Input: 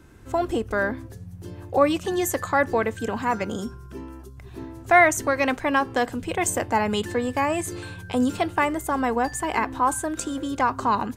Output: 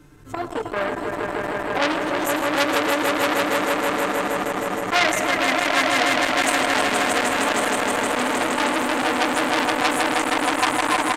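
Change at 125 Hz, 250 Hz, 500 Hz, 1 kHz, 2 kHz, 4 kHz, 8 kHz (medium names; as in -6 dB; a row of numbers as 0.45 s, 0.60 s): -4.0 dB, +1.0 dB, +2.0 dB, +2.5 dB, +6.0 dB, +12.5 dB, +3.5 dB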